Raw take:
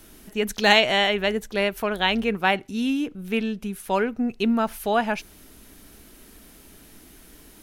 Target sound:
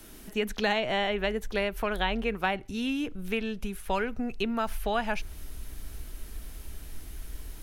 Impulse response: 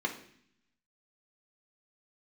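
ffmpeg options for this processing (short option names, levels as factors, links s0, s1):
-filter_complex "[0:a]acrossover=split=260|1300|3300[s0][s1][s2][s3];[s0]acompressor=threshold=0.0178:ratio=4[s4];[s1]acompressor=threshold=0.0398:ratio=4[s5];[s2]acompressor=threshold=0.0224:ratio=4[s6];[s3]acompressor=threshold=0.00501:ratio=4[s7];[s4][s5][s6][s7]amix=inputs=4:normalize=0,asubboost=boost=7.5:cutoff=82"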